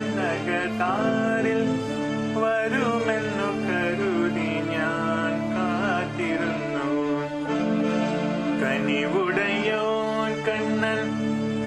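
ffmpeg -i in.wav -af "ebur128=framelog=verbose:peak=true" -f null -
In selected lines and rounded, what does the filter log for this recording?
Integrated loudness:
  I:         -24.6 LUFS
  Threshold: -34.6 LUFS
Loudness range:
  LRA:         1.2 LU
  Threshold: -44.7 LUFS
  LRA low:   -25.4 LUFS
  LRA high:  -24.1 LUFS
True peak:
  Peak:       -9.9 dBFS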